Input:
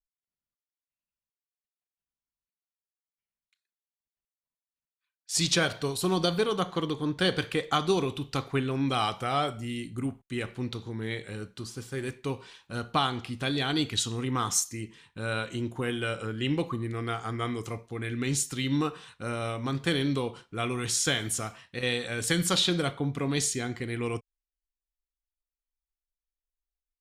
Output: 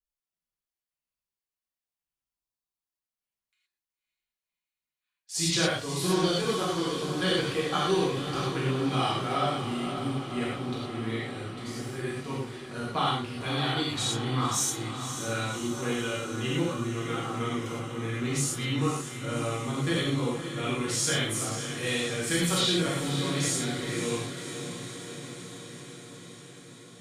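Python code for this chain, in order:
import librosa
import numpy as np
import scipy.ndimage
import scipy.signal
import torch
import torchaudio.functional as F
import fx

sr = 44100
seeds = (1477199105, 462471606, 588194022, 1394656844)

p1 = fx.spec_erase(x, sr, start_s=2.31, length_s=0.43, low_hz=1300.0, high_hz=3500.0)
p2 = p1 + fx.echo_diffused(p1, sr, ms=556, feedback_pct=70, wet_db=-9.0, dry=0)
p3 = fx.rev_gated(p2, sr, seeds[0], gate_ms=140, shape='flat', drr_db=-7.0)
y = F.gain(torch.from_numpy(p3), -8.0).numpy()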